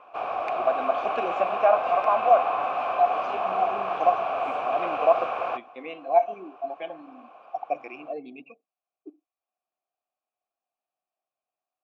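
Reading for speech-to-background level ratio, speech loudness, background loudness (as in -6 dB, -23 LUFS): 1.5 dB, -26.5 LUFS, -28.0 LUFS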